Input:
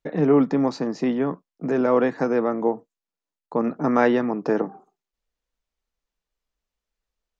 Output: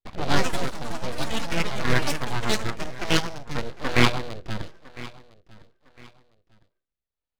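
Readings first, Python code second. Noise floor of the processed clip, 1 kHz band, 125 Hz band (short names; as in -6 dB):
under -85 dBFS, -1.5 dB, +4.0 dB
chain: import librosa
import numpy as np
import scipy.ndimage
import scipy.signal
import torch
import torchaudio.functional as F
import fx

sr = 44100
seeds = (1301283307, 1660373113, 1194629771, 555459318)

p1 = fx.cycle_switch(x, sr, every=3, mode='inverted')
p2 = fx.noise_reduce_blind(p1, sr, reduce_db=10)
p3 = scipy.signal.sosfilt(scipy.signal.cheby1(8, 1.0, 4500.0, 'lowpass', fs=sr, output='sos'), p2)
p4 = fx.hum_notches(p3, sr, base_hz=60, count=4)
p5 = np.abs(p4)
p6 = fx.rotary_switch(p5, sr, hz=8.0, then_hz=0.85, switch_at_s=2.91)
p7 = p6 + fx.echo_feedback(p6, sr, ms=1006, feedback_pct=30, wet_db=-19.5, dry=0)
p8 = fx.echo_pitch(p7, sr, ms=135, semitones=5, count=3, db_per_echo=-3.0)
y = F.gain(torch.from_numpy(p8), 6.0).numpy()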